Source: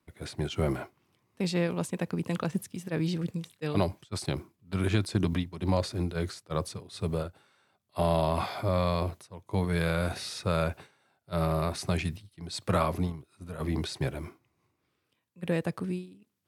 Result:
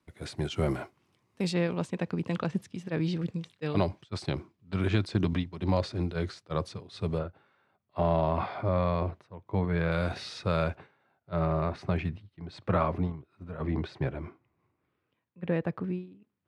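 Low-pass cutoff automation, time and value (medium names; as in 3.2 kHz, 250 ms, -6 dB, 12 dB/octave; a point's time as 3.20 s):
9.8 kHz
from 1.53 s 4.7 kHz
from 7.19 s 2.2 kHz
from 9.92 s 4.6 kHz
from 10.75 s 2.2 kHz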